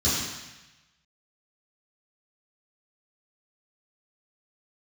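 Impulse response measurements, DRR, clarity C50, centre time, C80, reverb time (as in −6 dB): −13.0 dB, −0.5 dB, 85 ms, 2.0 dB, 1.0 s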